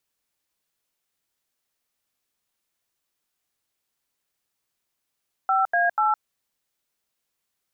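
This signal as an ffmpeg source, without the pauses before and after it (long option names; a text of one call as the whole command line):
ffmpeg -f lavfi -i "aevalsrc='0.0944*clip(min(mod(t,0.244),0.162-mod(t,0.244))/0.002,0,1)*(eq(floor(t/0.244),0)*(sin(2*PI*770*mod(t,0.244))+sin(2*PI*1336*mod(t,0.244)))+eq(floor(t/0.244),1)*(sin(2*PI*697*mod(t,0.244))+sin(2*PI*1633*mod(t,0.244)))+eq(floor(t/0.244),2)*(sin(2*PI*852*mod(t,0.244))+sin(2*PI*1336*mod(t,0.244))))':duration=0.732:sample_rate=44100" out.wav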